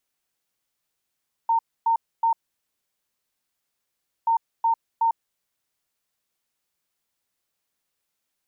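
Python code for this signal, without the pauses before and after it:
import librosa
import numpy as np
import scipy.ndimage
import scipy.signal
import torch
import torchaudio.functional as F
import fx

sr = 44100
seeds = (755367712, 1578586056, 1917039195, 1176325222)

y = fx.beep_pattern(sr, wave='sine', hz=914.0, on_s=0.1, off_s=0.27, beeps=3, pause_s=1.94, groups=2, level_db=-17.0)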